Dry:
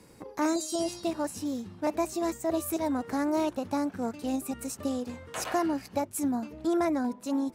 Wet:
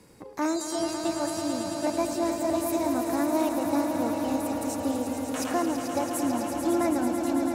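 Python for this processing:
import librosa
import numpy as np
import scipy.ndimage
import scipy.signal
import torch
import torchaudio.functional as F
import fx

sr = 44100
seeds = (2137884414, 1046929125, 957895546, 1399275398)

y = fx.echo_swell(x, sr, ms=110, loudest=5, wet_db=-9)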